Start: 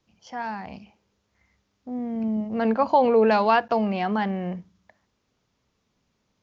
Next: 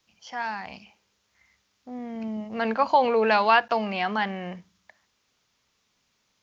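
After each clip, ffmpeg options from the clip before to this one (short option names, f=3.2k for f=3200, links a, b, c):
-filter_complex "[0:a]tiltshelf=f=860:g=-7.5,acrossover=split=4500[a][b];[b]acompressor=threshold=-49dB:ratio=4:attack=1:release=60[c];[a][c]amix=inputs=2:normalize=0"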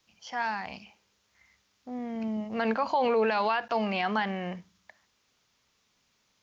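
-af "alimiter=limit=-18dB:level=0:latency=1:release=50"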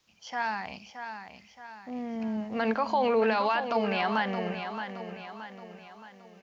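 -af "aecho=1:1:622|1244|1866|2488|3110:0.376|0.177|0.083|0.039|0.0183"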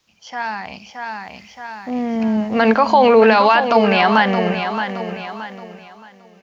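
-af "dynaudnorm=f=230:g=9:m=8.5dB,volume=5.5dB"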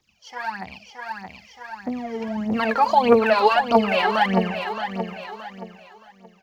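-af "aphaser=in_gain=1:out_gain=1:delay=2.5:decay=0.75:speed=1.6:type=triangular,volume=-8.5dB"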